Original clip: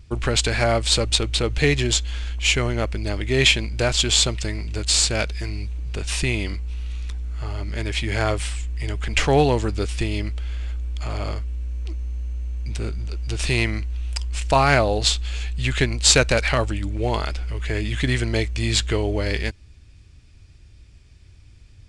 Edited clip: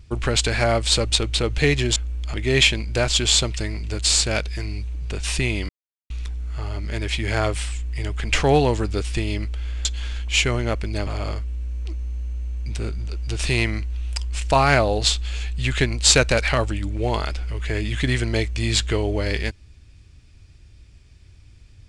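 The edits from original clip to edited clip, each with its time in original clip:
1.96–3.18 swap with 10.69–11.07
6.53–6.94 mute

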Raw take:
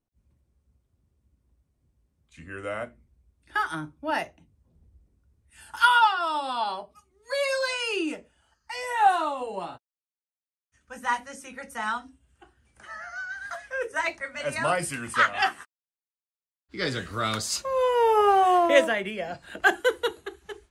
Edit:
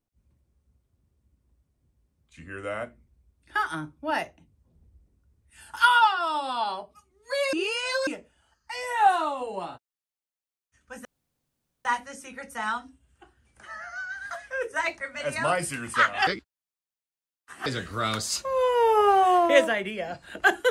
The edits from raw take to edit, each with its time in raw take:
7.53–8.07 reverse
11.05 insert room tone 0.80 s
15.47–16.86 reverse

